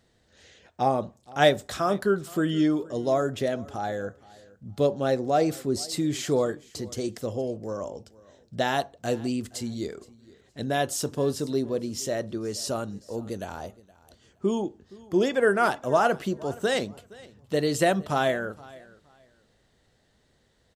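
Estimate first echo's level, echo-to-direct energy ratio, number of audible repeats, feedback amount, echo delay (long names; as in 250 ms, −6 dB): −22.0 dB, −22.0 dB, 2, 23%, 469 ms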